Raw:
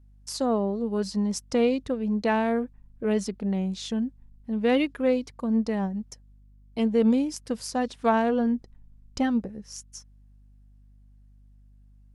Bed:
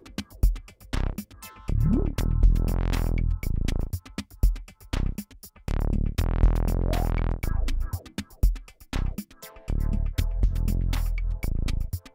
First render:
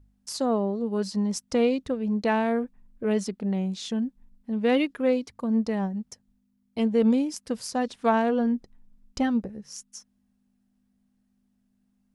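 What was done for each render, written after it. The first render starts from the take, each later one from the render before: de-hum 50 Hz, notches 3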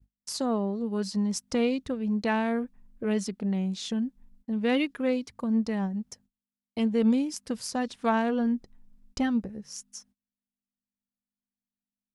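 gate -57 dBFS, range -27 dB; dynamic EQ 550 Hz, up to -5 dB, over -35 dBFS, Q 0.79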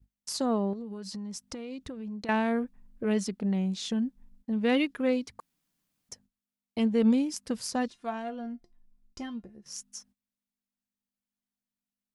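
0.73–2.29 compressor 10:1, threshold -35 dBFS; 5.4–6.09 room tone; 7.9–9.66 resonator 350 Hz, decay 0.16 s, mix 80%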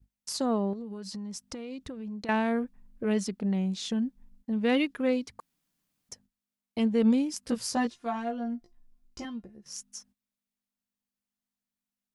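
7.41–9.25 doubler 17 ms -2.5 dB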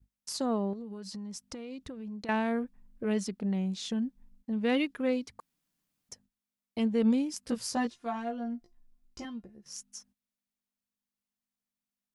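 gain -2.5 dB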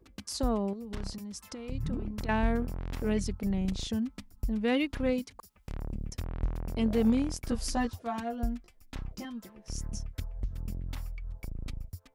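add bed -11.5 dB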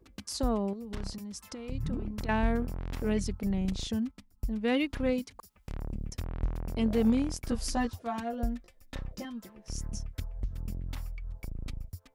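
4.11–4.74 upward expander, over -43 dBFS; 8.33–9.22 small resonant body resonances 540/1800/3700 Hz, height 11 dB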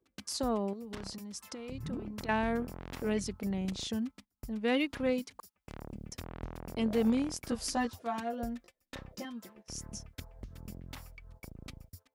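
HPF 230 Hz 6 dB/oct; gate -54 dBFS, range -13 dB

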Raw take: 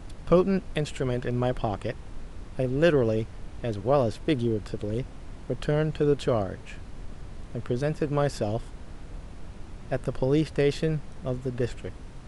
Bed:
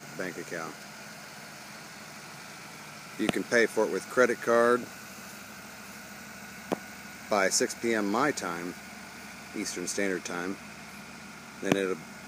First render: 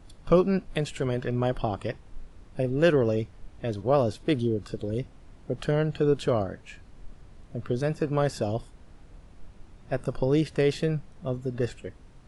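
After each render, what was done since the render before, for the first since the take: noise print and reduce 9 dB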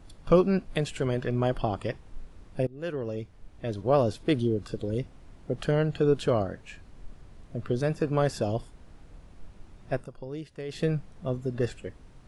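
2.67–3.97 fade in, from -21.5 dB; 9.93–10.84 dip -14 dB, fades 0.16 s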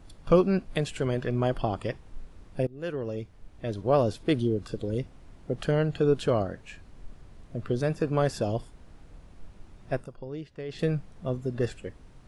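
10.15–10.79 air absorption 84 m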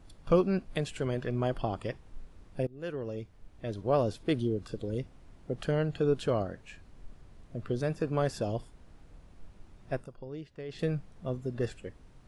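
gain -4 dB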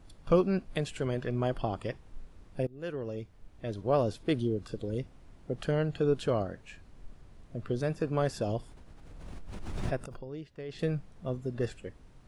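8.41–10.32 backwards sustainer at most 26 dB/s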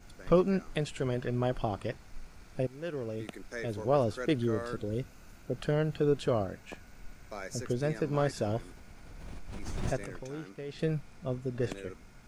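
add bed -16 dB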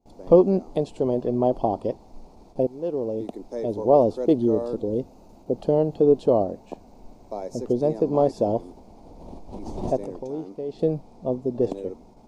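gate with hold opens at -43 dBFS; EQ curve 140 Hz 0 dB, 240 Hz +10 dB, 910 Hz +11 dB, 1500 Hz -18 dB, 4200 Hz -2 dB, 9000 Hz -7 dB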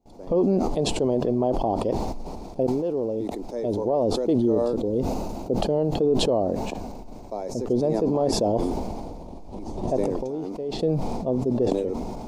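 limiter -13.5 dBFS, peak gain reduction 10.5 dB; sustainer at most 25 dB/s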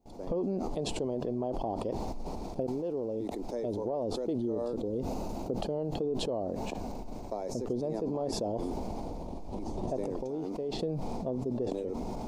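compressor 3:1, threshold -33 dBFS, peak gain reduction 12 dB

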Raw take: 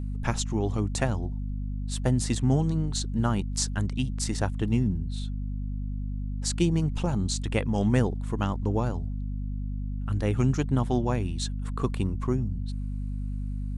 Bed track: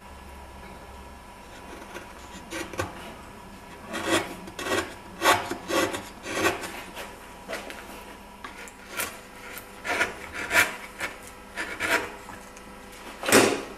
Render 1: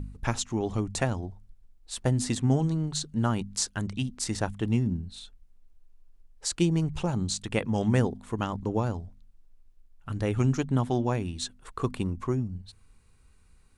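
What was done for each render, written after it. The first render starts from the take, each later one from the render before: de-hum 50 Hz, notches 5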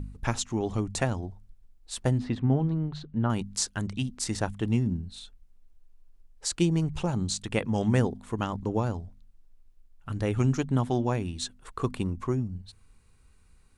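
2.18–3.3 air absorption 360 m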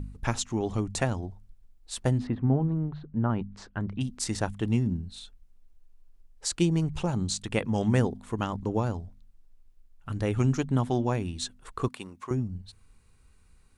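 2.27–4.01 LPF 1700 Hz; 11.88–12.31 HPF 920 Hz 6 dB/oct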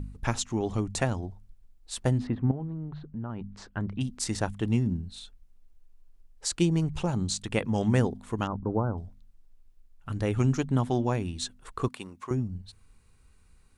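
2.51–3.44 compressor 2.5:1, threshold -35 dBFS; 8.47–8.98 brick-wall FIR low-pass 1600 Hz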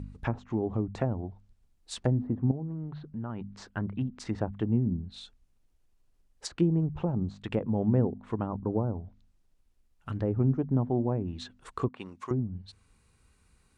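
treble ducked by the level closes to 650 Hz, closed at -24.5 dBFS; HPF 69 Hz 6 dB/oct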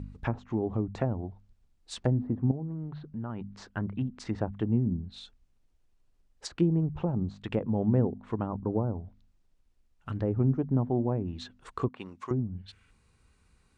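12.58–12.9 spectral gain 1300–3600 Hz +9 dB; Bessel low-pass 7700 Hz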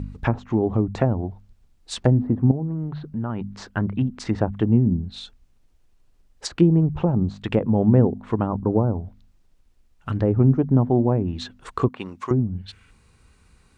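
gain +9 dB

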